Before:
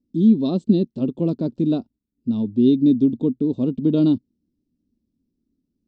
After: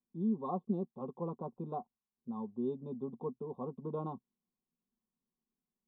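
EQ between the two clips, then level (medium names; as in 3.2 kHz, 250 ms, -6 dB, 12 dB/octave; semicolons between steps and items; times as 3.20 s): cascade formant filter a; treble shelf 2.4 kHz +11.5 dB; static phaser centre 440 Hz, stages 8; +10.0 dB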